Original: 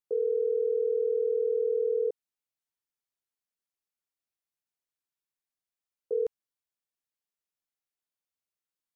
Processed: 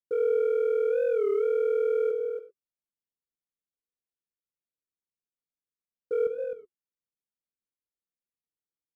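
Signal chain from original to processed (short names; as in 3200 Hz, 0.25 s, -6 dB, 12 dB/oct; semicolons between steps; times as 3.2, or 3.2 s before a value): elliptic low-pass 520 Hz; notch 390 Hz, Q 12; sample leveller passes 1; on a send: tapped delay 0.182/0.278 s -12.5/-9 dB; on the sum: non-linear reverb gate 0.13 s flat, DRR 9 dB; record warp 33 1/3 rpm, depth 160 cents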